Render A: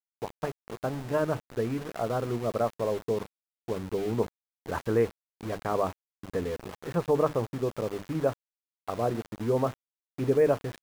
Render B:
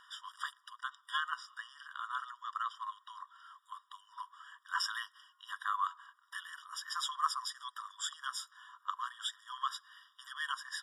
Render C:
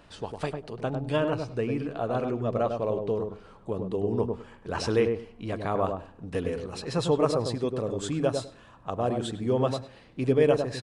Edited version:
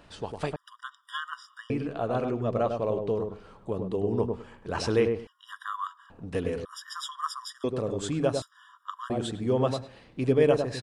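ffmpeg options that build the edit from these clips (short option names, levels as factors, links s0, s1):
-filter_complex "[1:a]asplit=4[s0][s1][s2][s3];[2:a]asplit=5[s4][s5][s6][s7][s8];[s4]atrim=end=0.562[s9];[s0]atrim=start=0.558:end=1.702[s10];[s5]atrim=start=1.698:end=5.272[s11];[s1]atrim=start=5.268:end=6.102[s12];[s6]atrim=start=6.098:end=6.652[s13];[s2]atrim=start=6.648:end=7.642[s14];[s7]atrim=start=7.638:end=8.422[s15];[s3]atrim=start=8.418:end=9.102[s16];[s8]atrim=start=9.098[s17];[s9][s10]acrossfade=d=0.004:c1=hsin:c2=hsin[s18];[s18][s11]acrossfade=d=0.004:c1=hsin:c2=hsin[s19];[s19][s12]acrossfade=d=0.004:c1=hsin:c2=hsin[s20];[s20][s13]acrossfade=d=0.004:c1=hsin:c2=hsin[s21];[s21][s14]acrossfade=d=0.004:c1=hsin:c2=hsin[s22];[s22][s15]acrossfade=d=0.004:c1=hsin:c2=hsin[s23];[s23][s16]acrossfade=d=0.004:c1=hsin:c2=hsin[s24];[s24][s17]acrossfade=d=0.004:c1=hsin:c2=hsin"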